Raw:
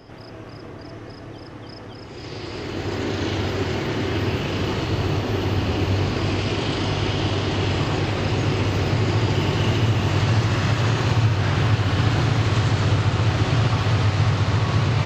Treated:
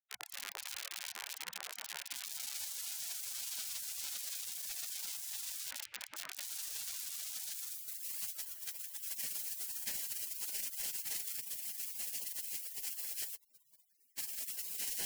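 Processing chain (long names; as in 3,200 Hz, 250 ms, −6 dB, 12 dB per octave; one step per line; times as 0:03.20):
downward compressor 2 to 1, threshold −22 dBFS, peak gain reduction 5 dB
0:05.70–0:06.41: tuned comb filter 440 Hz, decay 0.35 s, harmonics all, mix 80%
band-pass filter sweep 410 Hz → 1,300 Hz, 0:07.48–0:08.09
hollow resonant body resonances 1,200/2,300/3,700 Hz, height 17 dB, ringing for 95 ms
comparator with hysteresis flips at −39 dBFS
0:08.32–0:09.01: octave-band graphic EQ 125/250/1,000 Hz −5/+10/−8 dB
delay with a band-pass on its return 677 ms, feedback 56%, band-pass 760 Hz, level −10 dB
0:13.35–0:14.18: wrap-around overflow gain 40.5 dB
amplitude modulation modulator 25 Hz, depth 15%
gate on every frequency bin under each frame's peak −30 dB weak
level +8 dB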